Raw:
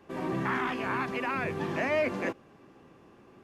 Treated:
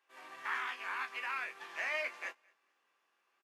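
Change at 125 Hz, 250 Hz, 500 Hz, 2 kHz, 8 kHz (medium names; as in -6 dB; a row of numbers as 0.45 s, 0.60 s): under -40 dB, -31.5 dB, -17.0 dB, -3.5 dB, -3.5 dB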